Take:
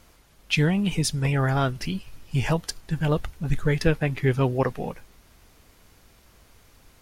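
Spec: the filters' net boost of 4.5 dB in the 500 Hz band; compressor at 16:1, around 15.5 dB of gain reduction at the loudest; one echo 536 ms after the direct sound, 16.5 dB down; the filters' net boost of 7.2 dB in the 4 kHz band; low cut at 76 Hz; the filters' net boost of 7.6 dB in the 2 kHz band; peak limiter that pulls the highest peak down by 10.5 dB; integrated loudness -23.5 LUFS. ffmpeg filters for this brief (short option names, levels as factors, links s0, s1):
-af "highpass=76,equalizer=f=500:t=o:g=5,equalizer=f=2000:t=o:g=7.5,equalizer=f=4000:t=o:g=7,acompressor=threshold=0.0398:ratio=16,alimiter=level_in=1.41:limit=0.0631:level=0:latency=1,volume=0.708,aecho=1:1:536:0.15,volume=5.01"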